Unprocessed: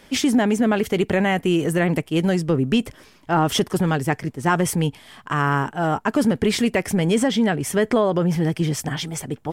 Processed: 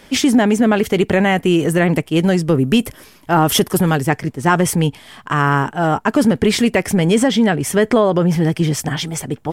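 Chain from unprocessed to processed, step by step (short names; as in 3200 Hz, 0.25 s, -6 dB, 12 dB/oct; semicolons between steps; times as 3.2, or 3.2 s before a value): 2.47–4.01 bell 12000 Hz +12 dB 0.65 oct; gain +5 dB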